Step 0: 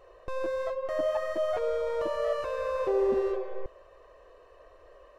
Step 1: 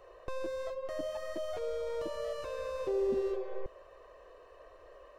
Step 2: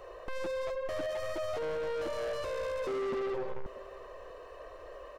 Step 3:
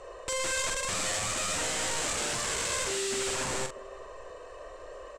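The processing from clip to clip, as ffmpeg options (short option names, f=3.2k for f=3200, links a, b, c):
-filter_complex "[0:a]lowshelf=f=170:g=-3,acrossover=split=380|3000[a][b][c];[b]acompressor=threshold=-41dB:ratio=6[d];[a][d][c]amix=inputs=3:normalize=0"
-af "asoftclip=type=tanh:threshold=-39.5dB,aecho=1:1:643:0.0841,volume=7.5dB"
-filter_complex "[0:a]aeval=exprs='(mod(47.3*val(0)+1,2)-1)/47.3':c=same,lowpass=f=7.8k:t=q:w=4.8,asplit=2[a][b];[b]adelay=44,volume=-7dB[c];[a][c]amix=inputs=2:normalize=0,volume=2dB"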